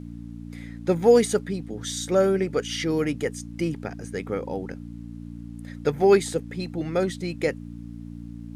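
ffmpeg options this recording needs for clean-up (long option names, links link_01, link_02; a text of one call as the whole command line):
ffmpeg -i in.wav -af "bandreject=frequency=57.9:width_type=h:width=4,bandreject=frequency=115.8:width_type=h:width=4,bandreject=frequency=173.7:width_type=h:width=4,bandreject=frequency=231.6:width_type=h:width=4,bandreject=frequency=289.5:width_type=h:width=4,agate=range=-21dB:threshold=-31dB" out.wav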